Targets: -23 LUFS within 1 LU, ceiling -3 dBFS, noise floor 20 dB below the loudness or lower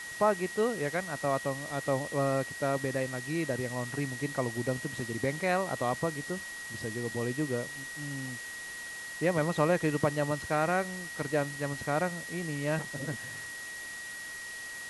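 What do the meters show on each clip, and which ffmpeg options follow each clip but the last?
steady tone 1.9 kHz; tone level -40 dBFS; noise floor -42 dBFS; noise floor target -53 dBFS; loudness -32.5 LUFS; peak level -13.0 dBFS; loudness target -23.0 LUFS
-> -af "bandreject=f=1900:w=30"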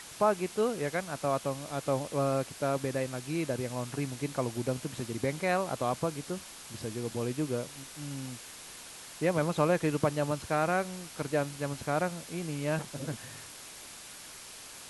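steady tone not found; noise floor -47 dBFS; noise floor target -53 dBFS
-> -af "afftdn=nr=6:nf=-47"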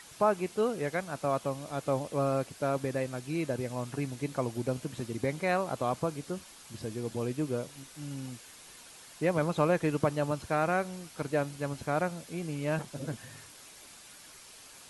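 noise floor -52 dBFS; noise floor target -53 dBFS
-> -af "afftdn=nr=6:nf=-52"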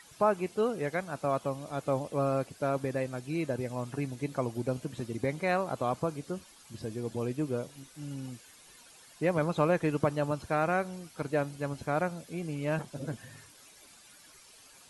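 noise floor -56 dBFS; loudness -32.5 LUFS; peak level -13.0 dBFS; loudness target -23.0 LUFS
-> -af "volume=2.99"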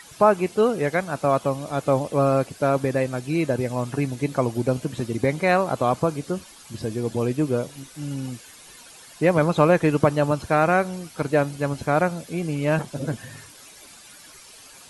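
loudness -23.0 LUFS; peak level -3.5 dBFS; noise floor -47 dBFS

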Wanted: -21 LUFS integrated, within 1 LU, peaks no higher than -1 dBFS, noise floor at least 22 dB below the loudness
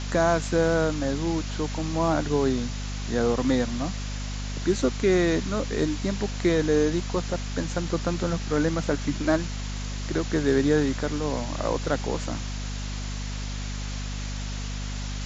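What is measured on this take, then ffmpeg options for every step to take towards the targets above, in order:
hum 50 Hz; highest harmonic 250 Hz; hum level -29 dBFS; noise floor -32 dBFS; noise floor target -49 dBFS; loudness -26.5 LUFS; peak level -9.0 dBFS; loudness target -21.0 LUFS
-> -af "bandreject=f=50:t=h:w=6,bandreject=f=100:t=h:w=6,bandreject=f=150:t=h:w=6,bandreject=f=200:t=h:w=6,bandreject=f=250:t=h:w=6"
-af "afftdn=nr=17:nf=-32"
-af "volume=1.88"

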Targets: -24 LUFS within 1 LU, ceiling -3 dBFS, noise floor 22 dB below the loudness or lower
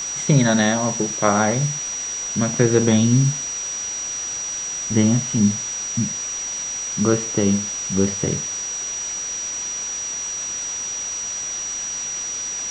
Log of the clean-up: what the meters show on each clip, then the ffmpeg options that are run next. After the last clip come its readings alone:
steady tone 5.8 kHz; tone level -25 dBFS; noise floor -28 dBFS; noise floor target -43 dBFS; loudness -21.0 LUFS; peak level -1.5 dBFS; loudness target -24.0 LUFS
-> -af "bandreject=f=5800:w=30"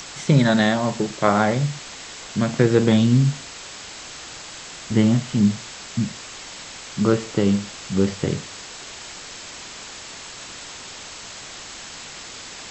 steady tone not found; noise floor -38 dBFS; noise floor target -43 dBFS
-> -af "afftdn=nr=6:nf=-38"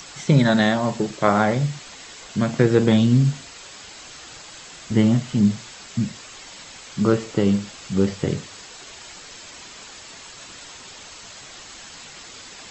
noise floor -42 dBFS; noise floor target -43 dBFS
-> -af "afftdn=nr=6:nf=-42"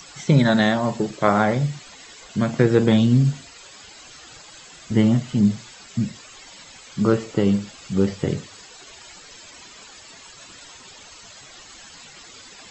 noise floor -45 dBFS; loudness -20.5 LUFS; peak level -1.5 dBFS; loudness target -24.0 LUFS
-> -af "volume=0.668"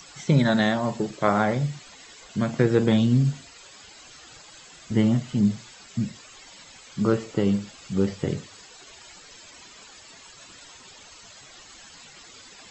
loudness -24.0 LUFS; peak level -5.0 dBFS; noise floor -48 dBFS

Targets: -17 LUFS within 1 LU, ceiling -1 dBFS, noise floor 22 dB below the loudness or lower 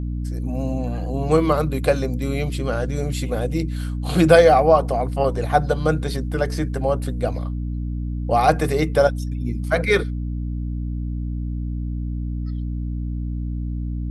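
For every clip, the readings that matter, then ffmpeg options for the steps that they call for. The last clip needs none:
hum 60 Hz; highest harmonic 300 Hz; hum level -23 dBFS; loudness -22.0 LUFS; peak level -1.5 dBFS; loudness target -17.0 LUFS
-> -af "bandreject=f=60:t=h:w=4,bandreject=f=120:t=h:w=4,bandreject=f=180:t=h:w=4,bandreject=f=240:t=h:w=4,bandreject=f=300:t=h:w=4"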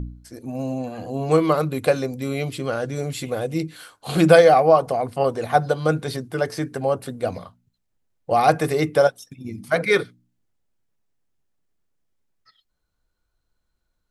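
hum not found; loudness -21.0 LUFS; peak level -1.5 dBFS; loudness target -17.0 LUFS
-> -af "volume=1.58,alimiter=limit=0.891:level=0:latency=1"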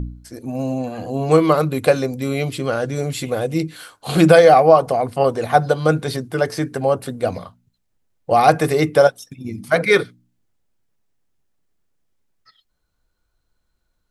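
loudness -17.5 LUFS; peak level -1.0 dBFS; noise floor -70 dBFS

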